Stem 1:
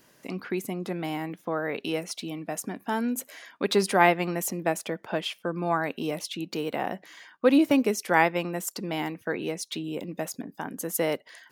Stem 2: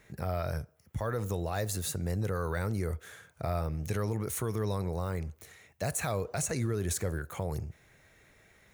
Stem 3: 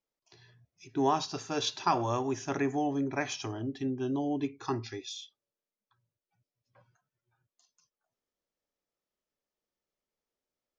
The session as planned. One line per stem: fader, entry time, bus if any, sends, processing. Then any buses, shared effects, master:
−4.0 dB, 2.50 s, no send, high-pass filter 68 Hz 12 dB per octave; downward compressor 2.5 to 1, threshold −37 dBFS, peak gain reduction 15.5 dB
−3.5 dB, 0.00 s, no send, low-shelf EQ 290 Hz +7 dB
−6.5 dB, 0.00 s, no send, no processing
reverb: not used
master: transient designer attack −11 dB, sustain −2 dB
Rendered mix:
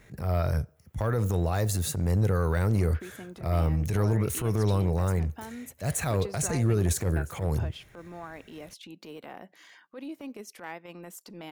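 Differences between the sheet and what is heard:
stem 2 −3.5 dB → +3.5 dB
stem 3: muted

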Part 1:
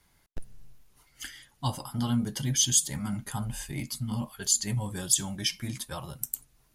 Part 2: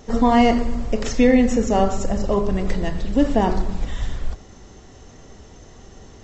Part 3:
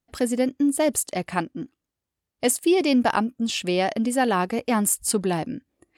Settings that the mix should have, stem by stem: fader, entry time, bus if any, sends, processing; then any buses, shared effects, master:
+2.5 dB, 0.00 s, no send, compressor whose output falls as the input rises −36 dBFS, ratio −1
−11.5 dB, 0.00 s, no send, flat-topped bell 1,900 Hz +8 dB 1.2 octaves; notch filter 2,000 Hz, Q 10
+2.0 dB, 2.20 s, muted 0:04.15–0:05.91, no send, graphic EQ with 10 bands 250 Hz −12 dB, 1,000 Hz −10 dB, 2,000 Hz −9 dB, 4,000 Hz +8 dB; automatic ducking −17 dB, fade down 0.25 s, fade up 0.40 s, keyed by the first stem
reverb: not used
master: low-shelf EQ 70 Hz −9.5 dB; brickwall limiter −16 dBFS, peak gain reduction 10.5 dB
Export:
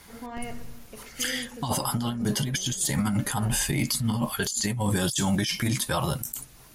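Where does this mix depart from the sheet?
stem 1 +2.5 dB → +12.0 dB
stem 2 −11.5 dB → −22.5 dB
stem 3: muted

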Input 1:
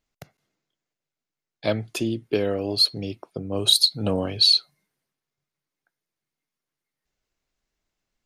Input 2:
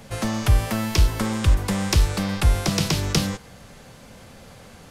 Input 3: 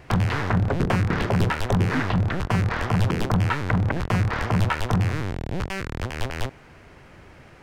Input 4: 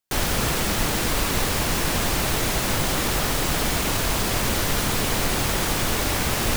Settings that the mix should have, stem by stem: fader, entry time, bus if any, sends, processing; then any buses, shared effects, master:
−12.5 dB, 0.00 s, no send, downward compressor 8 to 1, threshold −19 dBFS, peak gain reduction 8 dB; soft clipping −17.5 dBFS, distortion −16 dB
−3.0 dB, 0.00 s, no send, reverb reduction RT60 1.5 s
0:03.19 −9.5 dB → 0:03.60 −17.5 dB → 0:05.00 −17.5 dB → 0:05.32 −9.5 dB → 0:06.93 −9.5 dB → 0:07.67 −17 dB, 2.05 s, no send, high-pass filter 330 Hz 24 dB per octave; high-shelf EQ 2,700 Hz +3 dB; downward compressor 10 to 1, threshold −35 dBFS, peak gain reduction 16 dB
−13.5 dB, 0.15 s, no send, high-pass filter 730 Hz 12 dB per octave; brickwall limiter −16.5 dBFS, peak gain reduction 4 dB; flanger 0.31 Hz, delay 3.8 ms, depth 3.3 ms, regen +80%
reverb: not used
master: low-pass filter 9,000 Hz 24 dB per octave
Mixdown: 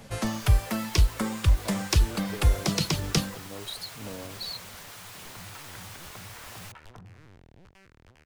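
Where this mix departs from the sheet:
stem 3: missing high-pass filter 330 Hz 24 dB per octave
master: missing low-pass filter 9,000 Hz 24 dB per octave

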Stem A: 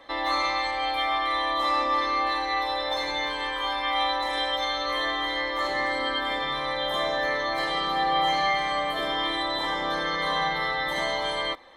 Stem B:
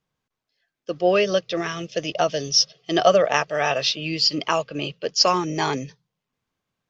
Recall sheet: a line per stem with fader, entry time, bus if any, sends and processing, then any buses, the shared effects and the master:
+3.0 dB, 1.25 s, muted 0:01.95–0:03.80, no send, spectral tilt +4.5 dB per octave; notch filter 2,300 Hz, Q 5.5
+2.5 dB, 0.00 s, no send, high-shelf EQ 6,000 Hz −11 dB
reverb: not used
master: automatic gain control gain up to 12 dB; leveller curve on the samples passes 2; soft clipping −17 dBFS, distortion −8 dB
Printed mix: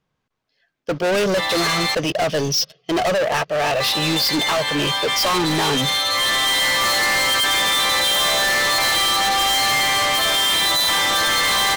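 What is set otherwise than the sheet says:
stem A: missing notch filter 2,300 Hz, Q 5.5
stem B +2.5 dB → +10.0 dB

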